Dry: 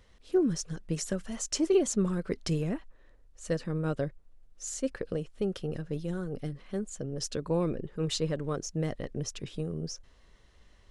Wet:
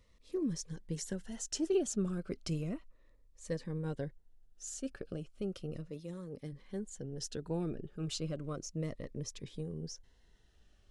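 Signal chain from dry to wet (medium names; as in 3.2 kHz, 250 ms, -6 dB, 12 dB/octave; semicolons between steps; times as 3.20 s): 5.89–6.51 s: high-pass 310 Hz -> 130 Hz 6 dB/octave; Shepard-style phaser falling 0.34 Hz; trim -6 dB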